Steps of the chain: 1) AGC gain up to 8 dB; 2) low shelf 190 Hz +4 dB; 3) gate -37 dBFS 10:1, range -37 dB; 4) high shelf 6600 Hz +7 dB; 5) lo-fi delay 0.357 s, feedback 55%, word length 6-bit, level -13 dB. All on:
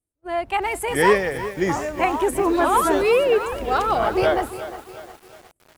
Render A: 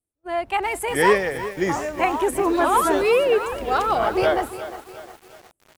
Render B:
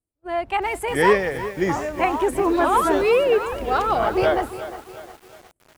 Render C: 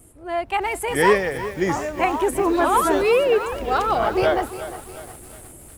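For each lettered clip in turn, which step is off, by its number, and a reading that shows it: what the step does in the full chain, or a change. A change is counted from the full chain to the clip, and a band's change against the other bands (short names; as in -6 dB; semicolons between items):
2, 125 Hz band -2.5 dB; 4, 8 kHz band -4.5 dB; 3, momentary loudness spread change +5 LU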